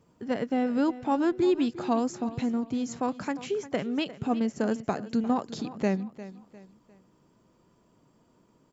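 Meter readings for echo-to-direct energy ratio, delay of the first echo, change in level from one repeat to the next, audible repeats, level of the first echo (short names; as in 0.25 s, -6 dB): -15.0 dB, 0.352 s, -8.5 dB, 3, -15.5 dB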